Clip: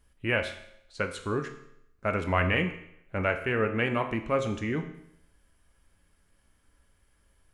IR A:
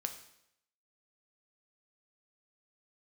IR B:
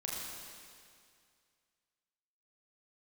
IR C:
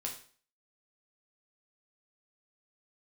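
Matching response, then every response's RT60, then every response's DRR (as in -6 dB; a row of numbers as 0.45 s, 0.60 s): A; 0.75 s, 2.2 s, 0.45 s; 5.5 dB, -4.5 dB, -0.5 dB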